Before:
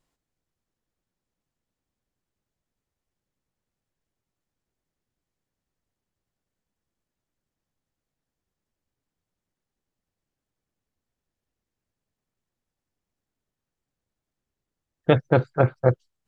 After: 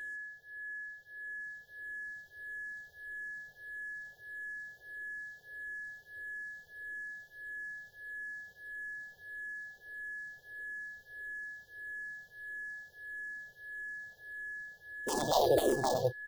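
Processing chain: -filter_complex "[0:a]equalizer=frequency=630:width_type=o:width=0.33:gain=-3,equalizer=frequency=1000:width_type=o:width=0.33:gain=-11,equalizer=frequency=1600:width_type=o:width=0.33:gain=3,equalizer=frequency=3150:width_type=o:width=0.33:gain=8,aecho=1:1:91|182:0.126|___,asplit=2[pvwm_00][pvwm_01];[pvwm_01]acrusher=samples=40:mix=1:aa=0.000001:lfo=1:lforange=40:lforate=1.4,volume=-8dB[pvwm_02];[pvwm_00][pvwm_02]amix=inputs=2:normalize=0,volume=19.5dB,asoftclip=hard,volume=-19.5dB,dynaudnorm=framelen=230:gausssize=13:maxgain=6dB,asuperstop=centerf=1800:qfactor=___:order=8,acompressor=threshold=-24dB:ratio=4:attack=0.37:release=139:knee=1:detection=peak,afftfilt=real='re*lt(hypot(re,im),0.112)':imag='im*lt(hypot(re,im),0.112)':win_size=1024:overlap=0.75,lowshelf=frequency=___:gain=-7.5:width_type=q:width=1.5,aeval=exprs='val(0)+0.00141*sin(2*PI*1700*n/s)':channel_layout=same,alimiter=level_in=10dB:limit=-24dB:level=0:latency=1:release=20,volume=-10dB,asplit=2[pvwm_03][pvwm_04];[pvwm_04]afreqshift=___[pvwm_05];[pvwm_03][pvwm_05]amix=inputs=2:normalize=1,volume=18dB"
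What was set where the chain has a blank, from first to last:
0.0352, 0.7, 330, -1.6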